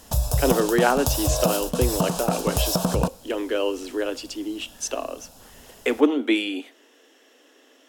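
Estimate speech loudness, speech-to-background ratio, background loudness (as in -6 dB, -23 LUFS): -25.5 LUFS, -0.5 dB, -25.0 LUFS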